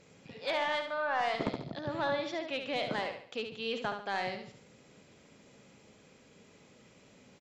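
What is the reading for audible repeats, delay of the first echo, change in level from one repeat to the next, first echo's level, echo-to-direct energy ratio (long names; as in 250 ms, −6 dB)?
4, 71 ms, −8.0 dB, −7.0 dB, −6.5 dB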